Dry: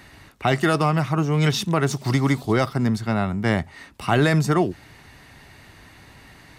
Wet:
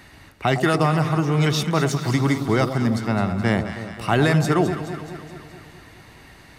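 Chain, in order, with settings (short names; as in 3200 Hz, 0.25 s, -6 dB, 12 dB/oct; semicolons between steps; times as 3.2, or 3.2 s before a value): echo with dull and thin repeats by turns 0.106 s, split 900 Hz, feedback 77%, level -8 dB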